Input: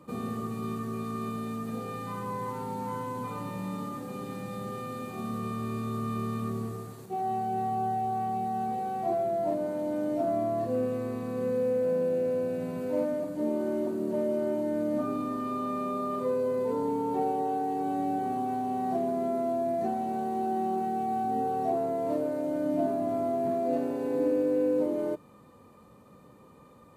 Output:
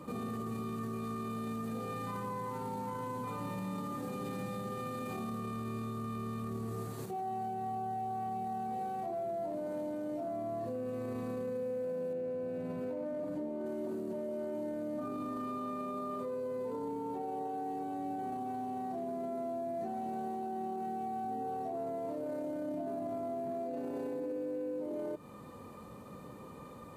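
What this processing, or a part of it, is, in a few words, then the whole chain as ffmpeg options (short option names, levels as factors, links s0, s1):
stacked limiters: -filter_complex "[0:a]alimiter=level_in=1.06:limit=0.0631:level=0:latency=1:release=356,volume=0.944,alimiter=level_in=2.11:limit=0.0631:level=0:latency=1:release=17,volume=0.473,alimiter=level_in=4.47:limit=0.0631:level=0:latency=1:release=111,volume=0.224,asettb=1/sr,asplit=3[s0][s1][s2];[s0]atrim=end=12.134[s3];[s1]atrim=start=12.13:end=13.66,asetpts=PTS-STARTPTS,afade=t=in:d=0.004:c=qsin,afade=t=out:st=1.526:d=0.004:c=qsin,highshelf=f=4200:g=-10[s4];[s2]atrim=start=13.656[s5];[s3][s4]acrossfade=d=0.004:c1=hsin:c2=qsin[s6];[s6][s5]acrossfade=d=0.004:c1=qsin:c2=hsin,volume=1.88"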